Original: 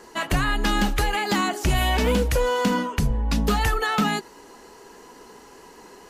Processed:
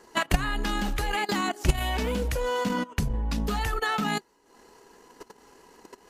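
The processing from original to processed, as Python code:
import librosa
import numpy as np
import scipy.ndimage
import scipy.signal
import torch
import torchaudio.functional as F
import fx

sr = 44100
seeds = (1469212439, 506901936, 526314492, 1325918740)

y = fx.level_steps(x, sr, step_db=9)
y = fx.transient(y, sr, attack_db=5, sustain_db=-11)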